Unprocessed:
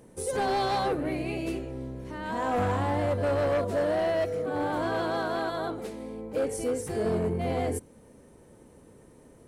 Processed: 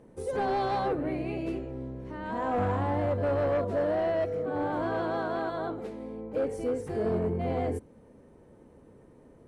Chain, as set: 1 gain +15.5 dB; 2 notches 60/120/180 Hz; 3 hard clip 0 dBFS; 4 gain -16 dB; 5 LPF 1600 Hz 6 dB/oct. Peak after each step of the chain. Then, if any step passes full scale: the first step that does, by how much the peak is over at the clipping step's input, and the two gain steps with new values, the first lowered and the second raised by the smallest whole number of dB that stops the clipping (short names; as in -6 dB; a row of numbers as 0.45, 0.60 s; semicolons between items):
-6.5, -5.5, -5.5, -21.5, -22.0 dBFS; no overload